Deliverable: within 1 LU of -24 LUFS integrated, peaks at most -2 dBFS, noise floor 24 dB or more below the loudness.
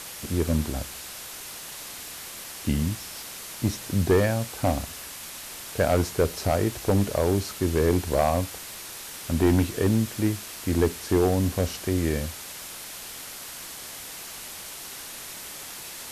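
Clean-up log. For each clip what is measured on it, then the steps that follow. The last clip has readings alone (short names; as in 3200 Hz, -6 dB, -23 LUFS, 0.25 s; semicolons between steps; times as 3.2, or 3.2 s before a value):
clipped 0.5%; flat tops at -13.5 dBFS; noise floor -40 dBFS; noise floor target -52 dBFS; loudness -27.5 LUFS; peak -13.5 dBFS; loudness target -24.0 LUFS
-> clip repair -13.5 dBFS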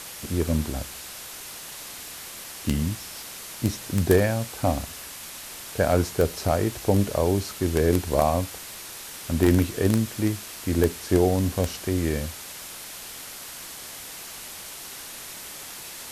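clipped 0.0%; noise floor -40 dBFS; noise floor target -51 dBFS
-> denoiser 11 dB, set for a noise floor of -40 dBFS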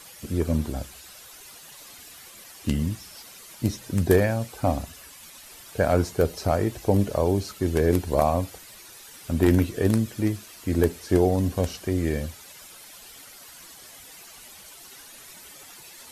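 noise floor -47 dBFS; noise floor target -49 dBFS
-> denoiser 6 dB, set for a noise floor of -47 dBFS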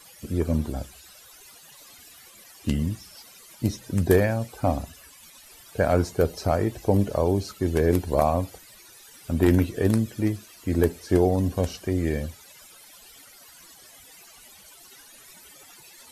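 noise floor -50 dBFS; loudness -25.0 LUFS; peak -5.0 dBFS; loudness target -24.0 LUFS
-> gain +1 dB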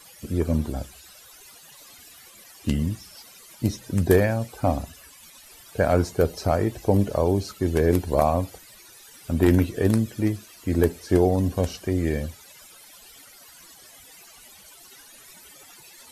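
loudness -24.0 LUFS; peak -4.0 dBFS; noise floor -49 dBFS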